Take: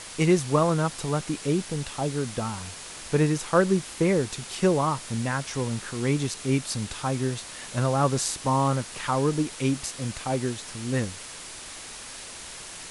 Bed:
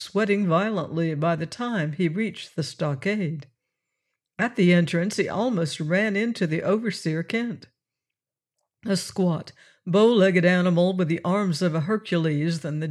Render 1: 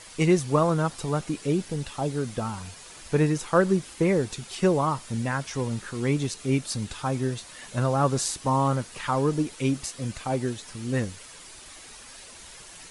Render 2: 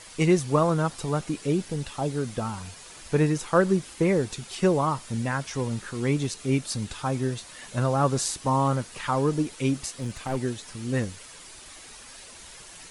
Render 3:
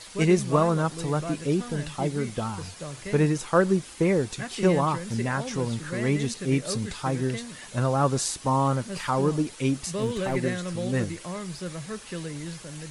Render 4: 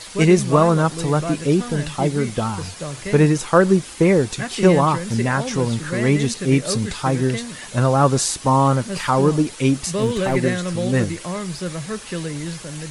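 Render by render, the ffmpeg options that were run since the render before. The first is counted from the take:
-af "afftdn=nr=8:nf=-41"
-filter_complex "[0:a]asplit=3[s0][s1][s2];[s0]afade=t=out:st=9.9:d=0.02[s3];[s1]aeval=exprs='clip(val(0),-1,0.0251)':c=same,afade=t=in:st=9.9:d=0.02,afade=t=out:st=10.36:d=0.02[s4];[s2]afade=t=in:st=10.36:d=0.02[s5];[s3][s4][s5]amix=inputs=3:normalize=0"
-filter_complex "[1:a]volume=0.251[s0];[0:a][s0]amix=inputs=2:normalize=0"
-af "volume=2.37,alimiter=limit=0.708:level=0:latency=1"

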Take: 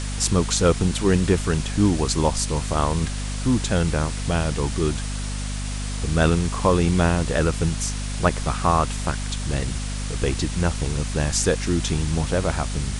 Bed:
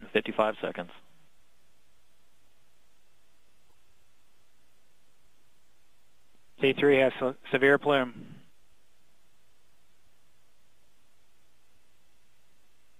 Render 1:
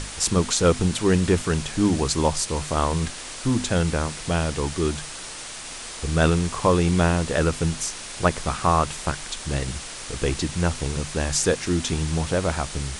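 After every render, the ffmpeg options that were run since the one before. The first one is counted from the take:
-af "bandreject=f=50:t=h:w=6,bandreject=f=100:t=h:w=6,bandreject=f=150:t=h:w=6,bandreject=f=200:t=h:w=6,bandreject=f=250:t=h:w=6"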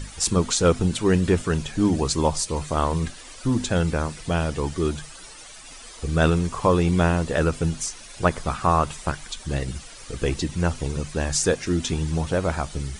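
-af "afftdn=nr=12:nf=-36"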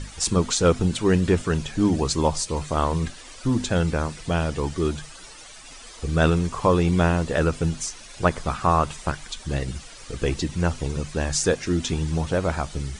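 -af "lowpass=9100"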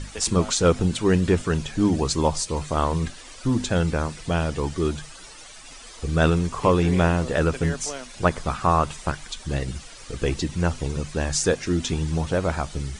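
-filter_complex "[1:a]volume=0.282[s0];[0:a][s0]amix=inputs=2:normalize=0"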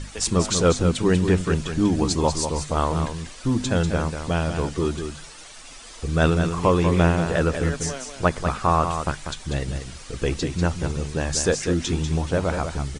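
-af "aecho=1:1:193:0.422"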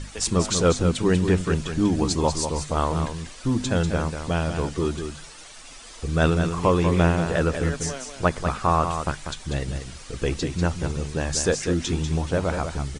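-af "volume=0.891"

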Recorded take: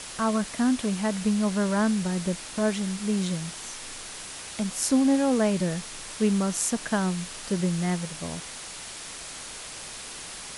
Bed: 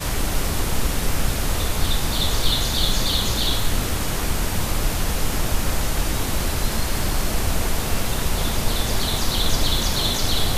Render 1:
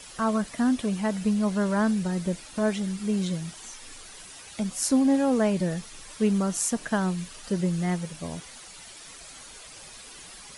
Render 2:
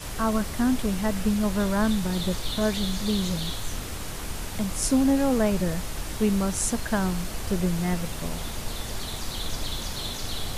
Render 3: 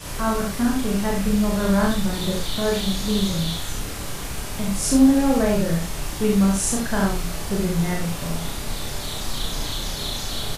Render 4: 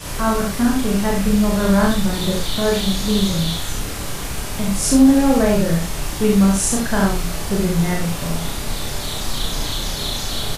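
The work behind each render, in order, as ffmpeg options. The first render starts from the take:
-af "afftdn=nr=10:nf=-40"
-filter_complex "[1:a]volume=0.282[s0];[0:a][s0]amix=inputs=2:normalize=0"
-filter_complex "[0:a]asplit=2[s0][s1];[s1]adelay=30,volume=0.631[s2];[s0][s2]amix=inputs=2:normalize=0,asplit=2[s3][s4];[s4]aecho=0:1:37|72:0.631|0.631[s5];[s3][s5]amix=inputs=2:normalize=0"
-af "volume=1.58,alimiter=limit=0.708:level=0:latency=1"

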